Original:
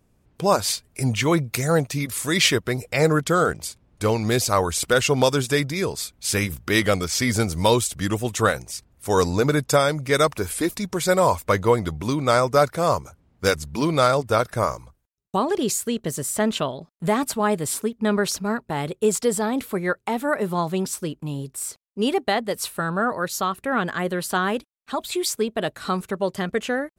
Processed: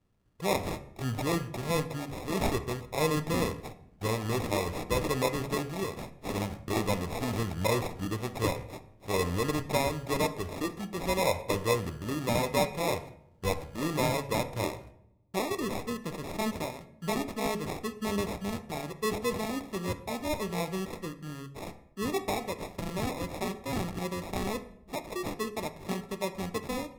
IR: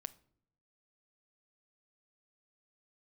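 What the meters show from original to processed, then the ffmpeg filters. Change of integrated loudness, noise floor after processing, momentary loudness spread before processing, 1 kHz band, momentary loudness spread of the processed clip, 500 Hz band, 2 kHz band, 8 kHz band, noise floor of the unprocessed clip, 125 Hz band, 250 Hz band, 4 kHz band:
−9.5 dB, −57 dBFS, 8 LU, −10.0 dB, 9 LU, −10.0 dB, −11.0 dB, −13.5 dB, −65 dBFS, −8.0 dB, −8.5 dB, −11.0 dB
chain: -filter_complex "[0:a]acrusher=samples=29:mix=1:aa=0.000001,bandreject=frequency=70.32:width_type=h:width=4,bandreject=frequency=140.64:width_type=h:width=4,bandreject=frequency=210.96:width_type=h:width=4,bandreject=frequency=281.28:width_type=h:width=4,bandreject=frequency=351.6:width_type=h:width=4,bandreject=frequency=421.92:width_type=h:width=4,bandreject=frequency=492.24:width_type=h:width=4,bandreject=frequency=562.56:width_type=h:width=4,bandreject=frequency=632.88:width_type=h:width=4,bandreject=frequency=703.2:width_type=h:width=4,bandreject=frequency=773.52:width_type=h:width=4,bandreject=frequency=843.84:width_type=h:width=4,bandreject=frequency=914.16:width_type=h:width=4,bandreject=frequency=984.48:width_type=h:width=4,bandreject=frequency=1054.8:width_type=h:width=4,bandreject=frequency=1125.12:width_type=h:width=4,bandreject=frequency=1195.44:width_type=h:width=4,bandreject=frequency=1265.76:width_type=h:width=4,bandreject=frequency=1336.08:width_type=h:width=4,bandreject=frequency=1406.4:width_type=h:width=4,bandreject=frequency=1476.72:width_type=h:width=4,bandreject=frequency=1547.04:width_type=h:width=4,bandreject=frequency=1617.36:width_type=h:width=4,bandreject=frequency=1687.68:width_type=h:width=4,bandreject=frequency=1758:width_type=h:width=4,bandreject=frequency=1828.32:width_type=h:width=4,bandreject=frequency=1898.64:width_type=h:width=4,bandreject=frequency=1968.96:width_type=h:width=4,bandreject=frequency=2039.28:width_type=h:width=4,bandreject=frequency=2109.6:width_type=h:width=4,bandreject=frequency=2179.92:width_type=h:width=4,bandreject=frequency=2250.24:width_type=h:width=4,bandreject=frequency=2320.56:width_type=h:width=4,bandreject=frequency=2390.88:width_type=h:width=4,bandreject=frequency=2461.2:width_type=h:width=4,bandreject=frequency=2531.52:width_type=h:width=4,bandreject=frequency=2601.84:width_type=h:width=4[link_01];[1:a]atrim=start_sample=2205,asetrate=28665,aresample=44100[link_02];[link_01][link_02]afir=irnorm=-1:irlink=0,volume=-7.5dB"

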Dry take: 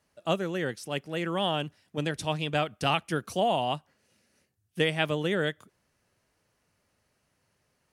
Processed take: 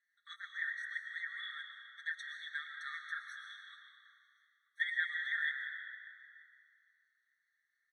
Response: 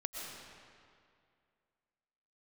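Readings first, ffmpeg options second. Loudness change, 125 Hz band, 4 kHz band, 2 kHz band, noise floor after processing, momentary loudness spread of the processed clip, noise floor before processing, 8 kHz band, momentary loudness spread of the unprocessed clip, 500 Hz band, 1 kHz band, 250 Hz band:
−10.0 dB, below −40 dB, −14.0 dB, −1.5 dB, −83 dBFS, 19 LU, −75 dBFS, below −15 dB, 7 LU, below −40 dB, −22.5 dB, below −40 dB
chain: -filter_complex "[0:a]asplit=3[link_01][link_02][link_03];[link_01]bandpass=frequency=530:width_type=q:width=8,volume=0dB[link_04];[link_02]bandpass=frequency=1840:width_type=q:width=8,volume=-6dB[link_05];[link_03]bandpass=frequency=2480:width_type=q:width=8,volume=-9dB[link_06];[link_04][link_05][link_06]amix=inputs=3:normalize=0,asplit=2[link_07][link_08];[link_08]adelay=932.9,volume=-23dB,highshelf=frequency=4000:gain=-21[link_09];[link_07][link_09]amix=inputs=2:normalize=0,asplit=2[link_10][link_11];[1:a]atrim=start_sample=2205,adelay=5[link_12];[link_11][link_12]afir=irnorm=-1:irlink=0,volume=0dB[link_13];[link_10][link_13]amix=inputs=2:normalize=0,afftfilt=real='re*eq(mod(floor(b*sr/1024/1100),2),1)':imag='im*eq(mod(floor(b*sr/1024/1100),2),1)':win_size=1024:overlap=0.75,volume=7dB"

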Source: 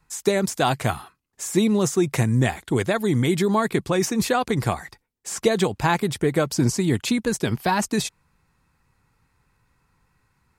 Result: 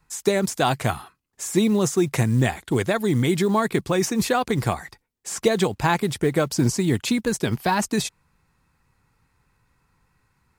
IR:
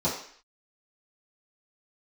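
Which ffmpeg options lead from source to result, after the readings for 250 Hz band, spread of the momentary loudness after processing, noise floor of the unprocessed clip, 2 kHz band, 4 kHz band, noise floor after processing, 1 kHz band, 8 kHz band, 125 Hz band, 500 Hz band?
0.0 dB, 6 LU, −70 dBFS, 0.0 dB, 0.0 dB, −70 dBFS, 0.0 dB, 0.0 dB, 0.0 dB, 0.0 dB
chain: -af "acrusher=bits=8:mode=log:mix=0:aa=0.000001"

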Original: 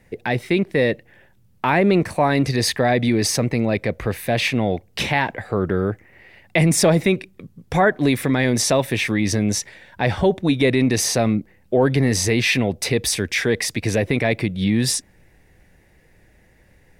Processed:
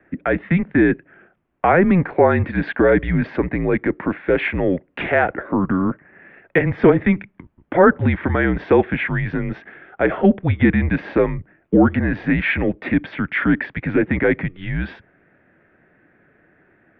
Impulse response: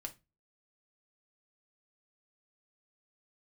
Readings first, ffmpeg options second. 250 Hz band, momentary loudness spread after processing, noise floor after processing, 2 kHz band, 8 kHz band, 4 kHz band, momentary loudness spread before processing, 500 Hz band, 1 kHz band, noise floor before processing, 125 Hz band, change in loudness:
+2.5 dB, 9 LU, −59 dBFS, +1.5 dB, below −40 dB, −15.0 dB, 7 LU, +1.5 dB, +1.5 dB, −56 dBFS, −0.5 dB, +1.0 dB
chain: -filter_complex "[0:a]acrossover=split=250 2300:gain=0.0794 1 0.1[link_01][link_02][link_03];[link_01][link_02][link_03]amix=inputs=3:normalize=0,highpass=frequency=260:width_type=q:width=0.5412,highpass=frequency=260:width_type=q:width=1.307,lowpass=frequency=3300:width_type=q:width=0.5176,lowpass=frequency=3300:width_type=q:width=0.7071,lowpass=frequency=3300:width_type=q:width=1.932,afreqshift=-180,volume=5.5dB"

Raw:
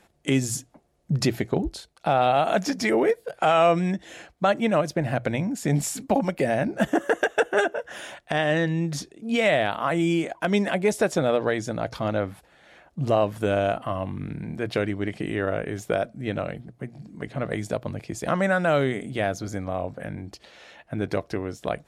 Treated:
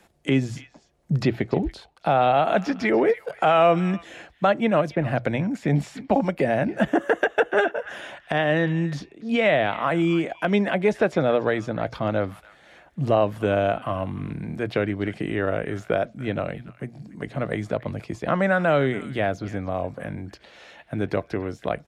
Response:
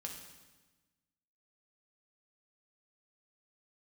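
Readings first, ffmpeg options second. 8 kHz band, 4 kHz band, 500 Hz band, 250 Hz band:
below −10 dB, −1.5 dB, +1.5 dB, +1.5 dB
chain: -filter_complex "[0:a]acrossover=split=170|940|3900[link_01][link_02][link_03][link_04];[link_03]aecho=1:1:287:0.178[link_05];[link_04]acompressor=threshold=-58dB:ratio=6[link_06];[link_01][link_02][link_05][link_06]amix=inputs=4:normalize=0,volume=1.5dB"

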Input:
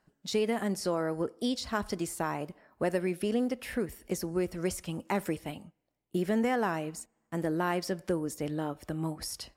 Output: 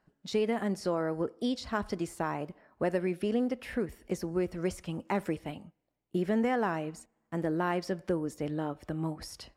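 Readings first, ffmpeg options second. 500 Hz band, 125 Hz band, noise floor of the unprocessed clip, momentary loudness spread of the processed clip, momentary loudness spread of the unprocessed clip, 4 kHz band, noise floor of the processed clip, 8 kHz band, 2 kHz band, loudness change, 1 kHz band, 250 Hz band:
0.0 dB, 0.0 dB, −78 dBFS, 8 LU, 8 LU, −4.0 dB, −79 dBFS, −8.0 dB, −1.0 dB, −0.5 dB, −0.5 dB, 0.0 dB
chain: -af "lowpass=frequency=3200:poles=1"

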